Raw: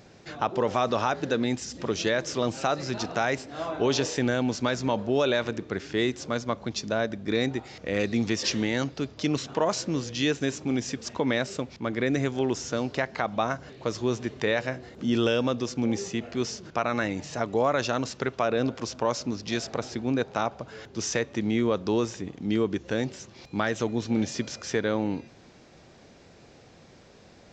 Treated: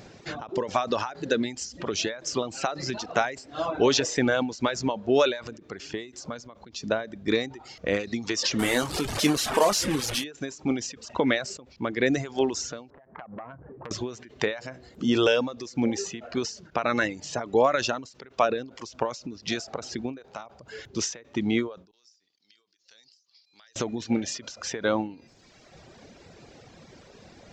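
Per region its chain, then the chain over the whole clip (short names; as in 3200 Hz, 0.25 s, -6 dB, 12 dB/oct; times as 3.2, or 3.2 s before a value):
8.59–10.24 delta modulation 64 kbps, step -25 dBFS + doubler 20 ms -9.5 dB
12.9–13.91 LPF 1300 Hz 24 dB/oct + compressor 16:1, threshold -36 dBFS + core saturation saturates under 1300 Hz
21.91–23.76 band-pass 4800 Hz, Q 5.1 + compressor, threshold -56 dBFS
whole clip: reverb removal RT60 1.1 s; dynamic EQ 120 Hz, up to -6 dB, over -41 dBFS, Q 0.72; ending taper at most 130 dB/s; gain +5.5 dB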